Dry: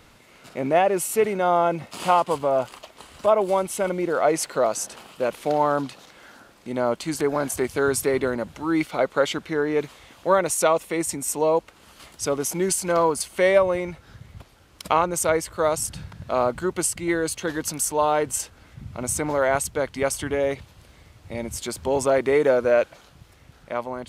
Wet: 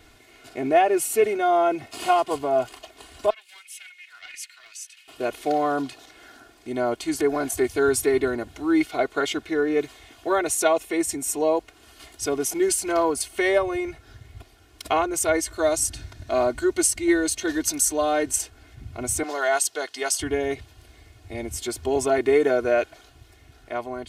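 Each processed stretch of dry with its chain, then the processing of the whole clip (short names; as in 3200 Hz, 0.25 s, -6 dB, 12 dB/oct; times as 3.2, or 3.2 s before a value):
3.3–5.08 ladder high-pass 2000 Hz, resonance 50% + Doppler distortion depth 0.3 ms
15.34–18.36 bell 6100 Hz +4.5 dB 1.2 oct + comb 3.3 ms, depth 31%
19.23–20.2 HPF 490 Hz + bell 5000 Hz +8 dB 1.6 oct + notch 2300 Hz, Q 7.6
whole clip: bell 1100 Hz -6 dB 0.37 oct; comb 2.8 ms, depth 94%; gain -2.5 dB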